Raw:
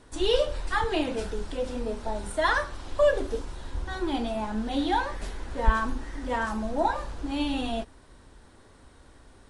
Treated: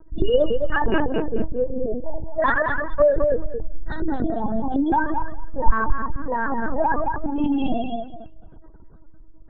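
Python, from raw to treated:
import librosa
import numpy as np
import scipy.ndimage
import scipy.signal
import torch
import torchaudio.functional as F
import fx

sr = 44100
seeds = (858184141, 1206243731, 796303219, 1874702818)

p1 = fx.spec_gate(x, sr, threshold_db=-15, keep='strong')
p2 = fx.low_shelf(p1, sr, hz=100.0, db=9.5)
p3 = 10.0 ** (-19.0 / 20.0) * np.tanh(p2 / 10.0 ** (-19.0 / 20.0))
p4 = p2 + (p3 * librosa.db_to_amplitude(-12.0))
p5 = fx.echo_feedback(p4, sr, ms=213, feedback_pct=31, wet_db=-5.0)
p6 = fx.lpc_vocoder(p5, sr, seeds[0], excitation='pitch_kept', order=10)
y = p6 * librosa.db_to_amplitude(2.0)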